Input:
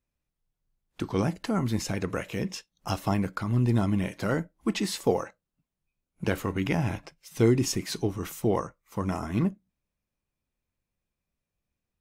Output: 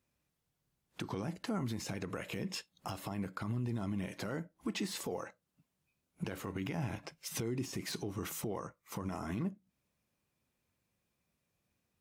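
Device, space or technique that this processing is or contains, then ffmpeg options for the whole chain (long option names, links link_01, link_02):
podcast mastering chain: -filter_complex "[0:a]asettb=1/sr,asplit=3[link_01][link_02][link_03];[link_01]atrim=end=2.124[link_04];[link_02]atrim=start=2.12:end=3.64,asetpts=PTS-STARTPTS,afade=type=in:duration=0.004:curve=qsin,afade=type=out:start_time=1.516:duration=0.004:curve=qsin,bandreject=frequency=5900:width=7.6[link_05];[link_03]atrim=start=3.636[link_06];[link_04][link_05]acrossfade=duration=0.004:curve1=hsin:curve2=qsin[link_07];[link_07][link_06]acrossfade=duration=0.004:curve1=qsin:curve2=hsin,highpass=89,deesser=0.75,acompressor=threshold=-41dB:ratio=2.5,alimiter=level_in=9.5dB:limit=-24dB:level=0:latency=1:release=71,volume=-9.5dB,volume=6dB" -ar 44100 -c:a libmp3lame -b:a 112k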